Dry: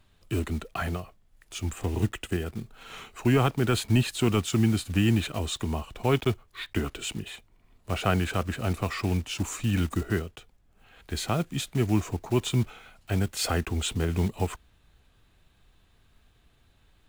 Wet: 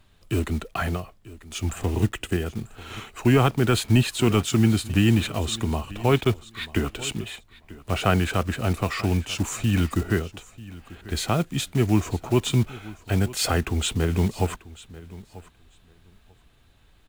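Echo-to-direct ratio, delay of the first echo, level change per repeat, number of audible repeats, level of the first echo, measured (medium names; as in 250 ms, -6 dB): -19.0 dB, 940 ms, -16.0 dB, 2, -19.0 dB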